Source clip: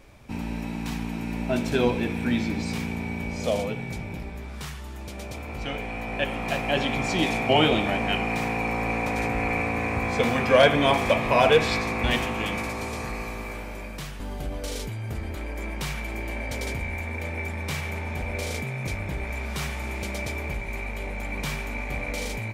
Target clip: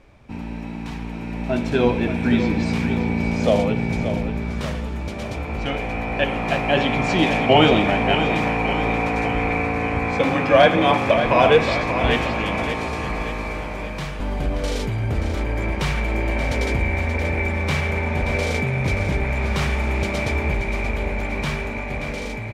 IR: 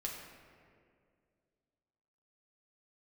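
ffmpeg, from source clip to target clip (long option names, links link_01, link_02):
-filter_complex "[0:a]asplit=3[link_01][link_02][link_03];[link_01]afade=type=out:start_time=10.18:duration=0.02[link_04];[link_02]afreqshift=35,afade=type=in:start_time=10.18:duration=0.02,afade=type=out:start_time=11.11:duration=0.02[link_05];[link_03]afade=type=in:start_time=11.11:duration=0.02[link_06];[link_04][link_05][link_06]amix=inputs=3:normalize=0,dynaudnorm=framelen=510:gausssize=7:maxgain=8.5dB,aemphasis=mode=reproduction:type=50fm,asplit=2[link_07][link_08];[link_08]aecho=0:1:579|1158|1737|2316|2895:0.335|0.164|0.0804|0.0394|0.0193[link_09];[link_07][link_09]amix=inputs=2:normalize=0"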